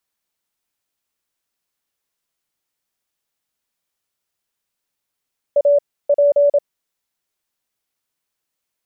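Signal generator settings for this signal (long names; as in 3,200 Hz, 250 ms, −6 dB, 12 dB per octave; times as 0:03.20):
Morse code "A P" 27 words per minute 575 Hz −9.5 dBFS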